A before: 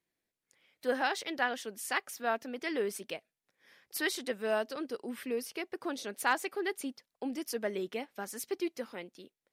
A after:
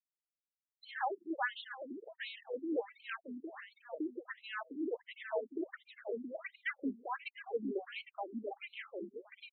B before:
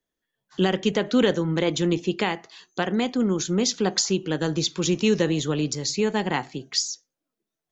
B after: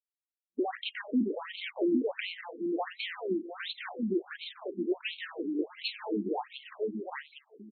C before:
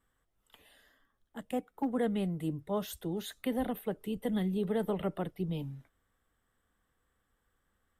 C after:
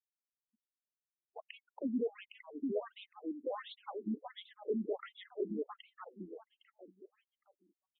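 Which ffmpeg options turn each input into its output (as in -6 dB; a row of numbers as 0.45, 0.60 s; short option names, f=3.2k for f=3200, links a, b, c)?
-filter_complex "[0:a]aeval=exprs='if(lt(val(0),0),0.447*val(0),val(0))':c=same,afftfilt=real='re*gte(hypot(re,im),0.00501)':imag='im*gte(hypot(re,im),0.00501)':win_size=1024:overlap=0.75,equalizer=f=9.5k:w=1:g=4,asplit=2[a][b];[b]acompressor=threshold=-33dB:ratio=8,volume=-2dB[c];[a][c]amix=inputs=2:normalize=0,asoftclip=type=tanh:threshold=-18dB,asplit=2[d][e];[e]aecho=0:1:810|1620|2430:0.631|0.139|0.0305[f];[d][f]amix=inputs=2:normalize=0,afftfilt=real='re*between(b*sr/1024,260*pow(3100/260,0.5+0.5*sin(2*PI*1.4*pts/sr))/1.41,260*pow(3100/260,0.5+0.5*sin(2*PI*1.4*pts/sr))*1.41)':imag='im*between(b*sr/1024,260*pow(3100/260,0.5+0.5*sin(2*PI*1.4*pts/sr))/1.41,260*pow(3100/260,0.5+0.5*sin(2*PI*1.4*pts/sr))*1.41)':win_size=1024:overlap=0.75"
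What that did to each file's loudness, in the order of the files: -6.5, -10.5, -6.5 LU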